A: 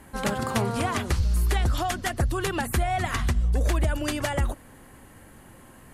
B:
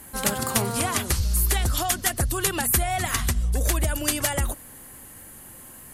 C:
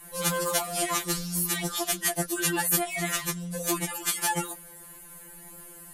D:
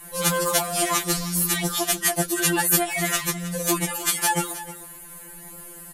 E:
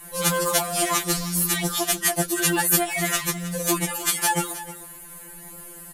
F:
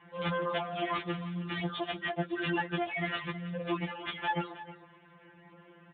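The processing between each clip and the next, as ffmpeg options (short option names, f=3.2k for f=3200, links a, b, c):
-af "aemphasis=mode=production:type=75fm"
-af "afftfilt=real='re*2.83*eq(mod(b,8),0)':imag='im*2.83*eq(mod(b,8),0)':win_size=2048:overlap=0.75"
-af "aecho=1:1:314:0.188,volume=5dB"
-af "acrusher=bits=7:mode=log:mix=0:aa=0.000001"
-af "volume=-7.5dB" -ar 8000 -c:a libopencore_amrnb -b:a 12200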